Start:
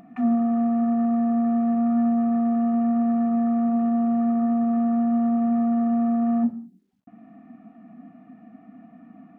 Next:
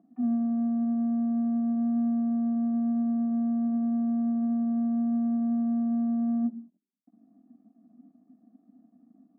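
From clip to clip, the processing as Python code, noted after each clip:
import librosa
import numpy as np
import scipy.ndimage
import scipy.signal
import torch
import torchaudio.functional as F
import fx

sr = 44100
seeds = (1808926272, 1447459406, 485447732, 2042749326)

y = fx.leveller(x, sr, passes=2)
y = fx.ladder_bandpass(y, sr, hz=310.0, resonance_pct=40)
y = fx.upward_expand(y, sr, threshold_db=-43.0, expansion=1.5)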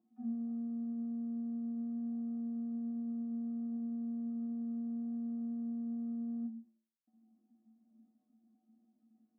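y = fx.stiff_resonator(x, sr, f0_hz=110.0, decay_s=0.47, stiffness=0.008)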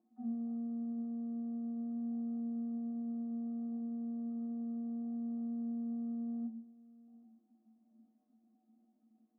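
y = scipy.signal.sosfilt(scipy.signal.butter(2, 1000.0, 'lowpass', fs=sr, output='sos'), x)
y = fx.peak_eq(y, sr, hz=110.0, db=-14.5, octaves=1.9)
y = y + 10.0 ** (-20.5 / 20.0) * np.pad(y, (int(784 * sr / 1000.0), 0))[:len(y)]
y = F.gain(torch.from_numpy(y), 6.0).numpy()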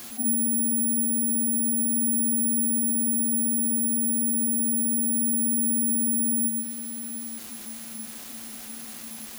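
y = fx.quant_dither(x, sr, seeds[0], bits=12, dither='triangular')
y = (np.kron(y[::4], np.eye(4)[0]) * 4)[:len(y)]
y = fx.env_flatten(y, sr, amount_pct=50)
y = F.gain(torch.from_numpy(y), 7.0).numpy()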